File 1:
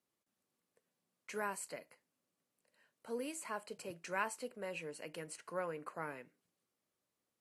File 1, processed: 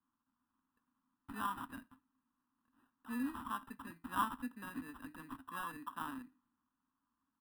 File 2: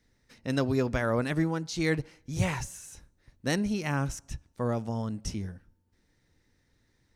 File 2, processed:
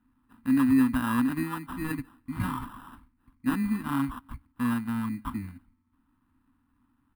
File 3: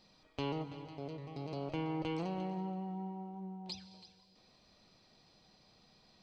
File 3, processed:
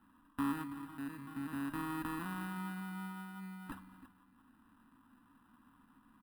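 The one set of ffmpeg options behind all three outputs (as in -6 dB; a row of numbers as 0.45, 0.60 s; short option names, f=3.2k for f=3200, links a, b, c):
-af "acrusher=samples=20:mix=1:aa=0.000001,firequalizer=gain_entry='entry(100,0);entry(160,-5);entry(260,15);entry(370,-12);entry(570,-19);entry(1000,10);entry(2000,0);entry(4400,-8);entry(6300,-19);entry(9100,1)':delay=0.05:min_phase=1,volume=-3dB"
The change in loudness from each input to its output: 0.0, +2.0, -1.0 LU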